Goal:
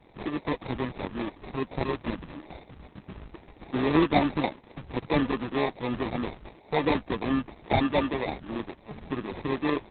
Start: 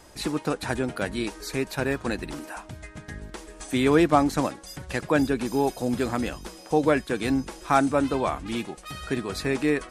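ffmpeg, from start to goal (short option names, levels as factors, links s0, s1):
-filter_complex "[0:a]asettb=1/sr,asplit=3[s0][s1][s2];[s0]atrim=end=0.494[s3];[s1]atrim=start=0.49:end=2.88,asetpts=PTS-STARTPTS,afade=t=in:d=0.004:c=qsin,afade=t=out:st=2.386:d=0.004:c=qsin,lowpass=8500[s4];[s2]atrim=start=2.876[s5];[s3][s4]acrossfade=d=0.004:c1=hsin:c2=qsin[s6];[s6][s5]acrossfade=d=0.004:c1=qsin:c2=hsin,adynamicequalizer=threshold=0.0112:dfrequency=1100:dqfactor=2.9:tfrequency=1100:tqfactor=2.9:attack=5:release=100:ratio=0.375:range=2.5:mode=cutabove:tftype=bell,acrusher=samples=30:mix=1:aa=0.000001,volume=0.75" -ar 48000 -c:a libopus -b:a 6k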